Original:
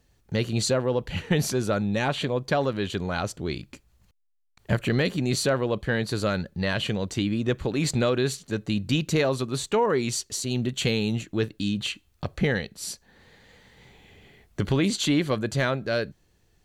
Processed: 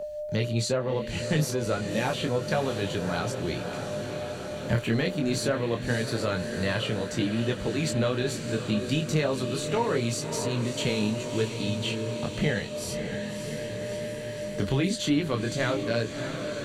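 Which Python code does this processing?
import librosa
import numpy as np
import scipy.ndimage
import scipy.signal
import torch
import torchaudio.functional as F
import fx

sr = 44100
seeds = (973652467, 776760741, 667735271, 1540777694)

y = x + 10.0 ** (-34.0 / 20.0) * np.sin(2.0 * np.pi * 600.0 * np.arange(len(x)) / sr)
y = fx.echo_diffused(y, sr, ms=612, feedback_pct=70, wet_db=-10)
y = fx.chorus_voices(y, sr, voices=4, hz=0.26, base_ms=22, depth_ms=4.9, mix_pct=40)
y = fx.band_squash(y, sr, depth_pct=40)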